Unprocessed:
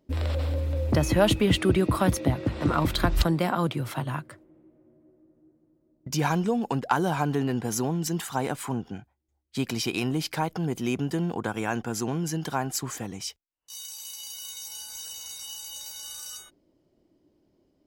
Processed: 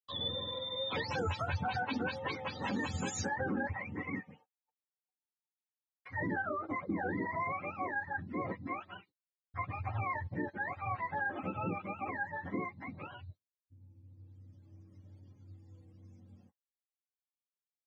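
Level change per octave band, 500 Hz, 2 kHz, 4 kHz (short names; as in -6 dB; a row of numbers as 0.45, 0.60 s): -12.5, -3.0, -8.5 dB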